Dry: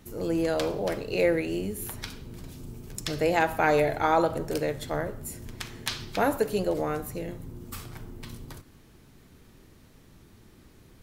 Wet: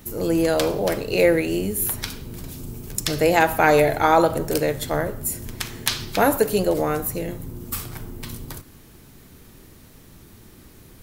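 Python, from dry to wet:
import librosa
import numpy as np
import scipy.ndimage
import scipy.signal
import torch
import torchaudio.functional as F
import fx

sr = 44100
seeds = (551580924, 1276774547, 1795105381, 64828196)

y = fx.high_shelf(x, sr, hz=9700.0, db=12.0)
y = y * librosa.db_to_amplitude(6.5)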